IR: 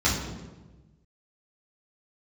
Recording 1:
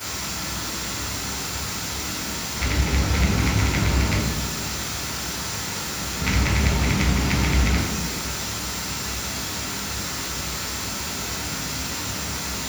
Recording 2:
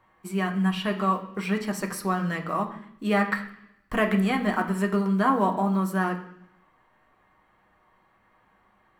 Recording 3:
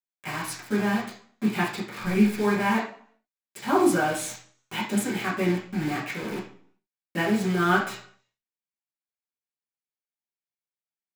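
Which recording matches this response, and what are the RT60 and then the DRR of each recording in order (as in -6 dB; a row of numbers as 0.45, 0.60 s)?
1; 1.2, 0.70, 0.50 s; -9.0, 2.5, -8.5 dB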